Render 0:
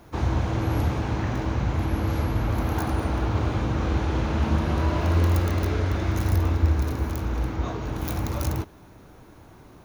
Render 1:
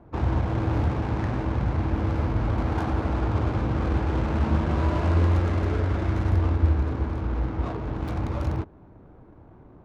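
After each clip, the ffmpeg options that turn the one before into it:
ffmpeg -i in.wav -af "adynamicsmooth=sensitivity=4.5:basefreq=940" out.wav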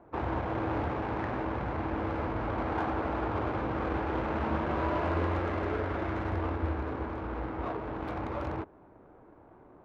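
ffmpeg -i in.wav -af "bass=frequency=250:gain=-13,treble=frequency=4000:gain=-15" out.wav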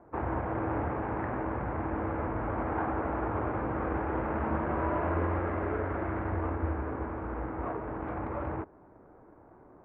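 ffmpeg -i in.wav -af "lowpass=frequency=2100:width=0.5412,lowpass=frequency=2100:width=1.3066" out.wav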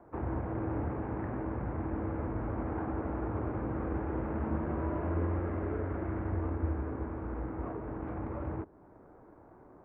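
ffmpeg -i in.wav -filter_complex "[0:a]acrossover=split=420[link_01][link_02];[link_02]acompressor=threshold=-58dB:ratio=1.5[link_03];[link_01][link_03]amix=inputs=2:normalize=0" out.wav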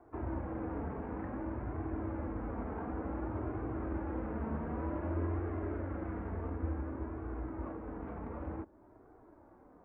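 ffmpeg -i in.wav -af "flanger=delay=2.6:depth=2:regen=-31:speed=0.55:shape=triangular" out.wav

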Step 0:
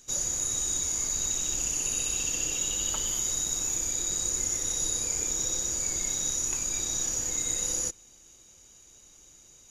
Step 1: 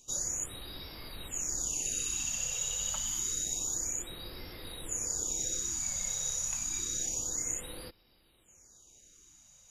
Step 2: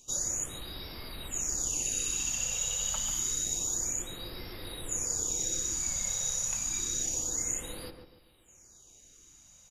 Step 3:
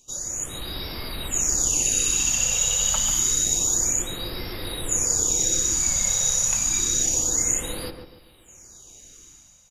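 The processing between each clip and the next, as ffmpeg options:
ffmpeg -i in.wav -af "afftfilt=real='re*(1-between(b*sr/1024,290*pow(7800/290,0.5+0.5*sin(2*PI*0.28*pts/sr))/1.41,290*pow(7800/290,0.5+0.5*sin(2*PI*0.28*pts/sr))*1.41))':imag='im*(1-between(b*sr/1024,290*pow(7800/290,0.5+0.5*sin(2*PI*0.28*pts/sr))/1.41,290*pow(7800/290,0.5+0.5*sin(2*PI*0.28*pts/sr))*1.41))':win_size=1024:overlap=0.75,volume=-4.5dB" out.wav
ffmpeg -i in.wav -filter_complex "[0:a]asplit=2[link_01][link_02];[link_02]adelay=142,lowpass=frequency=1500:poles=1,volume=-6dB,asplit=2[link_03][link_04];[link_04]adelay=142,lowpass=frequency=1500:poles=1,volume=0.36,asplit=2[link_05][link_06];[link_06]adelay=142,lowpass=frequency=1500:poles=1,volume=0.36,asplit=2[link_07][link_08];[link_08]adelay=142,lowpass=frequency=1500:poles=1,volume=0.36[link_09];[link_01][link_03][link_05][link_07][link_09]amix=inputs=5:normalize=0,volume=2dB" out.wav
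ffmpeg -i in.wav -af "dynaudnorm=framelen=110:gausssize=9:maxgain=10dB" out.wav

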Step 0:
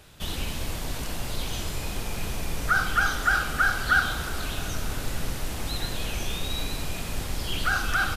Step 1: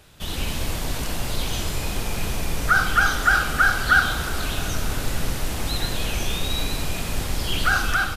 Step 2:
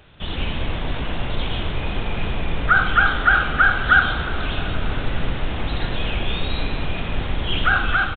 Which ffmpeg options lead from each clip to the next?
ffmpeg -i in.wav -af "dynaudnorm=framelen=130:gausssize=5:maxgain=5dB" out.wav
ffmpeg -i in.wav -af "aresample=8000,aresample=44100,volume=2.5dB" out.wav

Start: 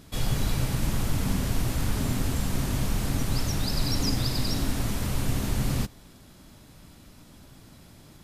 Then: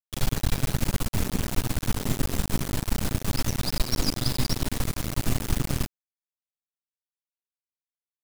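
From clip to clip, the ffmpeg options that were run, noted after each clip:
ffmpeg -i in.wav -af "aeval=exprs='0.237*(cos(1*acos(clip(val(0)/0.237,-1,1)))-cos(1*PI/2))+0.075*(cos(2*acos(clip(val(0)/0.237,-1,1)))-cos(2*PI/2))':channel_layout=same,aeval=exprs='sgn(val(0))*max(abs(val(0))-0.00422,0)':channel_layout=same,acrusher=bits=3:dc=4:mix=0:aa=0.000001,volume=1.5dB" out.wav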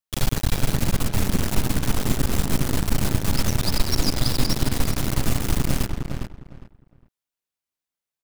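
ffmpeg -i in.wav -filter_complex "[0:a]asplit=2[link_01][link_02];[link_02]alimiter=limit=-18.5dB:level=0:latency=1:release=184,volume=-0.5dB[link_03];[link_01][link_03]amix=inputs=2:normalize=0,asplit=2[link_04][link_05];[link_05]adelay=407,lowpass=frequency=2200:poles=1,volume=-5dB,asplit=2[link_06][link_07];[link_07]adelay=407,lowpass=frequency=2200:poles=1,volume=0.22,asplit=2[link_08][link_09];[link_09]adelay=407,lowpass=frequency=2200:poles=1,volume=0.22[link_10];[link_04][link_06][link_08][link_10]amix=inputs=4:normalize=0" out.wav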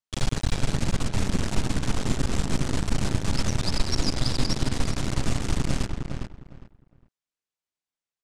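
ffmpeg -i in.wav -af "lowpass=frequency=8600:width=0.5412,lowpass=frequency=8600:width=1.3066,volume=-3dB" out.wav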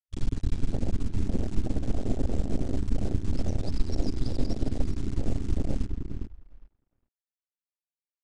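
ffmpeg -i in.wav -af "afwtdn=0.0501,equalizer=frequency=150:width_type=o:width=0.58:gain=-10.5,aresample=22050,aresample=44100" out.wav

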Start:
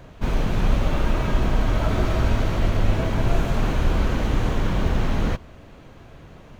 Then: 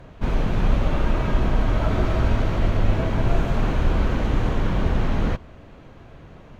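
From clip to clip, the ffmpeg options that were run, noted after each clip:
ffmpeg -i in.wav -af "aemphasis=mode=reproduction:type=cd" out.wav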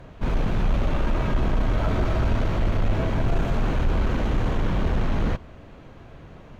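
ffmpeg -i in.wav -af "asoftclip=type=tanh:threshold=-14dB" out.wav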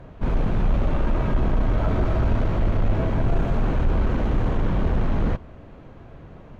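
ffmpeg -i in.wav -af "highshelf=frequency=2100:gain=-9,volume=1.5dB" out.wav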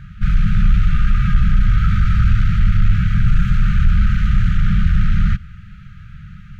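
ffmpeg -i in.wav -af "afftfilt=real='re*(1-between(b*sr/4096,210,1200))':imag='im*(1-between(b*sr/4096,210,1200))':win_size=4096:overlap=0.75,volume=8dB" out.wav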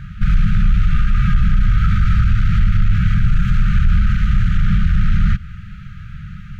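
ffmpeg -i in.wav -af "alimiter=limit=-11dB:level=0:latency=1:release=162,volume=4.5dB" out.wav

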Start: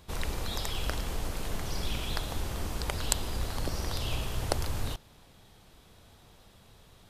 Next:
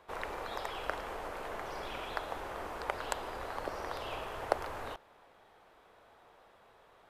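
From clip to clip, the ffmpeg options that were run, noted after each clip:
ffmpeg -i in.wav -filter_complex "[0:a]acrossover=split=400 2100:gain=0.0794 1 0.112[link_01][link_02][link_03];[link_01][link_02][link_03]amix=inputs=3:normalize=0,volume=3.5dB" out.wav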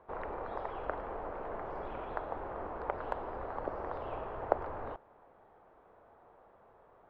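ffmpeg -i in.wav -af "lowpass=1100,volume=2dB" out.wav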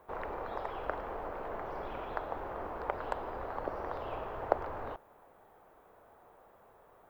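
ffmpeg -i in.wav -af "aemphasis=mode=production:type=75fm,volume=1dB" out.wav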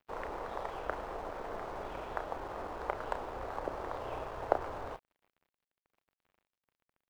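ffmpeg -i in.wav -filter_complex "[0:a]asplit=2[link_01][link_02];[link_02]adelay=32,volume=-9dB[link_03];[link_01][link_03]amix=inputs=2:normalize=0,aeval=exprs='sgn(val(0))*max(abs(val(0))-0.00237,0)':channel_layout=same" out.wav

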